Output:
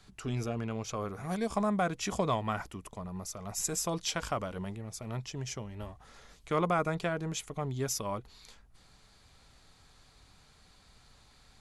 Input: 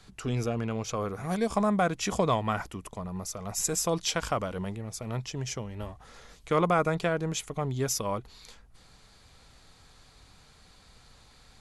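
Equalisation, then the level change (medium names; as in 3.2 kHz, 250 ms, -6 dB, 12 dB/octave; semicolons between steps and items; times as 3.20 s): band-stop 490 Hz, Q 15; -4.0 dB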